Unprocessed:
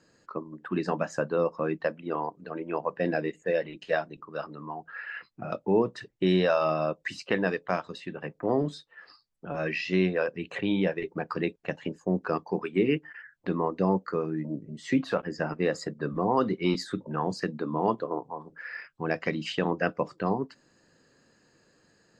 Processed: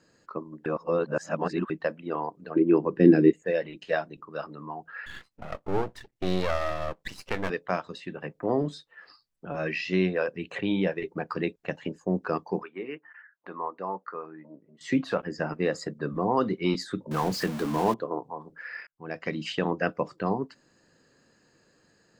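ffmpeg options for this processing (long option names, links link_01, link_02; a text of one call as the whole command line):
ffmpeg -i in.wav -filter_complex "[0:a]asettb=1/sr,asplit=3[link_01][link_02][link_03];[link_01]atrim=end=2.564[link_04];[link_02]atrim=start=2.56:end=3.33,asetpts=PTS-STARTPTS,afade=type=in:duration=0.004:curve=qsin,afade=type=out:start_time=0.766:duration=0.004:curve=qsin,lowshelf=frequency=470:width_type=q:width=3:gain=9.5[link_05];[link_03]atrim=start=3.326[link_06];[link_04][link_05]acrossfade=duration=0.004:curve1=hsin:curve2=qsin[link_07];[link_07][link_06]acrossfade=duration=0.004:curve1=qsin:curve2=hsin,asettb=1/sr,asplit=3[link_08][link_09][link_10];[link_08]atrim=end=5.064[link_11];[link_09]atrim=start=5.06:end=7.5,asetpts=PTS-STARTPTS,afade=type=in:duration=0.004:curve=qsin,afade=type=out:start_time=2.436:duration=0.004:curve=qsin,aeval=exprs='max(val(0),0)':channel_layout=same[link_12];[link_10]atrim=start=7.496[link_13];[link_11][link_12]acrossfade=duration=0.004:curve1=hsin:curve2=qsin[link_14];[link_14][link_13]acrossfade=duration=0.004:curve1=qsin:curve2=hsin,asettb=1/sr,asplit=3[link_15][link_16][link_17];[link_15]atrim=end=12.634[link_18];[link_16]atrim=start=12.63:end=14.81,asetpts=PTS-STARTPTS,afade=type=in:duration=0.004:curve=qsin,afade=type=out:start_time=2.176:duration=0.004:curve=qsin,bandpass=frequency=1100:width_type=q:width=1.5[link_19];[link_17]atrim=start=14.806[link_20];[link_18][link_19]acrossfade=duration=0.004:curve1=hsin:curve2=qsin[link_21];[link_21][link_20]acrossfade=duration=0.004:curve1=qsin:curve2=hsin,asettb=1/sr,asplit=3[link_22][link_23][link_24];[link_22]atrim=end=17.114[link_25];[link_23]atrim=start=17.11:end=17.94,asetpts=PTS-STARTPTS,afade=type=in:duration=0.004:curve=qsin,afade=type=out:start_time=0.826:duration=0.004:curve=qsin,aeval=exprs='val(0)+0.5*0.0266*sgn(val(0))':channel_layout=same[link_26];[link_24]atrim=start=17.936[link_27];[link_25][link_26]acrossfade=duration=0.004:curve1=hsin:curve2=qsin[link_28];[link_28][link_27]acrossfade=duration=0.004:curve1=qsin:curve2=hsin,asplit=4[link_29][link_30][link_31][link_32];[link_29]atrim=end=0.662[link_33];[link_30]atrim=start=0.658:end=1.702,asetpts=PTS-STARTPTS,areverse[link_34];[link_31]atrim=start=1.698:end=18.87,asetpts=PTS-STARTPTS,afade=type=out:start_time=17.168:duration=0.004:curve=hsin[link_35];[link_32]atrim=start=18.87,asetpts=PTS-STARTPTS,afade=type=in:duration=0.55[link_36];[link_33][link_34]acrossfade=duration=0.004:curve1=hsin:curve2=hsin[link_37];[link_35][link_36]concat=n=2:v=0:a=1[link_38];[link_37][link_38]acrossfade=duration=0.004:curve1=hsin:curve2=hsin" out.wav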